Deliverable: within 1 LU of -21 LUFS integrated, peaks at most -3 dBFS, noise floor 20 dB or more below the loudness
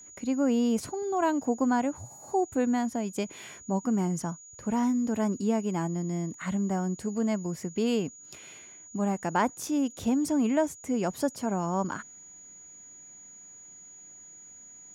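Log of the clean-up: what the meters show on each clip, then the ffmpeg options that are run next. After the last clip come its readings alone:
steady tone 6.8 kHz; tone level -47 dBFS; loudness -29.0 LUFS; peak level -13.5 dBFS; loudness target -21.0 LUFS
-> -af "bandreject=f=6800:w=30"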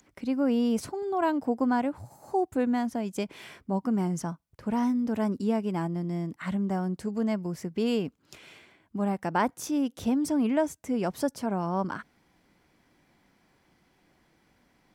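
steady tone not found; loudness -29.0 LUFS; peak level -14.0 dBFS; loudness target -21.0 LUFS
-> -af "volume=2.51"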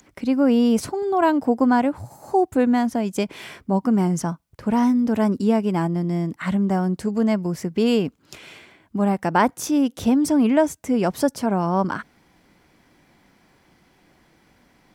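loudness -21.0 LUFS; peak level -6.0 dBFS; noise floor -60 dBFS

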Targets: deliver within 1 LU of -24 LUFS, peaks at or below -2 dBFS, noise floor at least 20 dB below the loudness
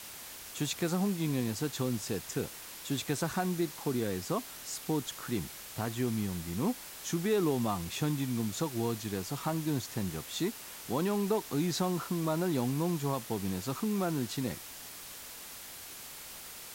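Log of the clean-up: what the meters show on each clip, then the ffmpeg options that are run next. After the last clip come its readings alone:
noise floor -47 dBFS; noise floor target -54 dBFS; loudness -34.0 LUFS; peak level -19.0 dBFS; loudness target -24.0 LUFS
-> -af "afftdn=nr=7:nf=-47"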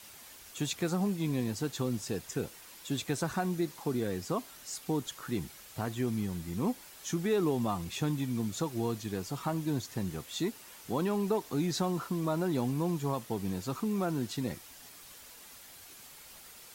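noise floor -52 dBFS; noise floor target -54 dBFS
-> -af "afftdn=nr=6:nf=-52"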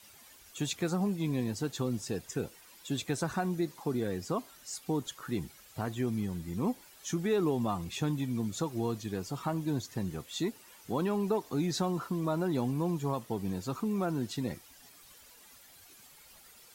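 noise floor -57 dBFS; loudness -34.0 LUFS; peak level -19.5 dBFS; loudness target -24.0 LUFS
-> -af "volume=3.16"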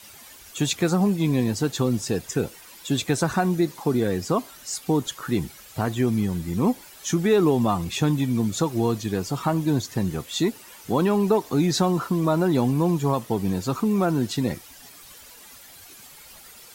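loudness -24.0 LUFS; peak level -9.5 dBFS; noise floor -47 dBFS

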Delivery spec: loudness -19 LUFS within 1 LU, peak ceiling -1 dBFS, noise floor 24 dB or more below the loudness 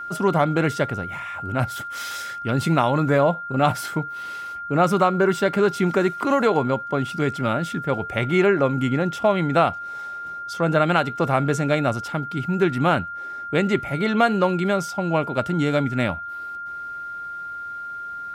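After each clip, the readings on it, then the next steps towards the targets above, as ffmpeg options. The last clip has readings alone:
steady tone 1.4 kHz; tone level -30 dBFS; loudness -22.5 LUFS; peak level -5.5 dBFS; loudness target -19.0 LUFS
-> -af "bandreject=f=1400:w=30"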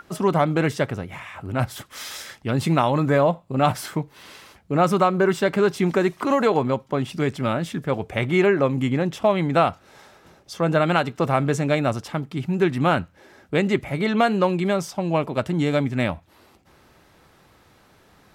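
steady tone not found; loudness -22.0 LUFS; peak level -5.5 dBFS; loudness target -19.0 LUFS
-> -af "volume=1.41"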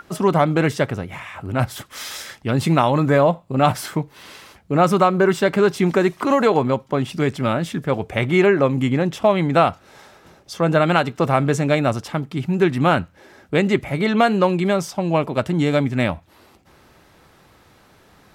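loudness -19.0 LUFS; peak level -2.5 dBFS; noise floor -53 dBFS

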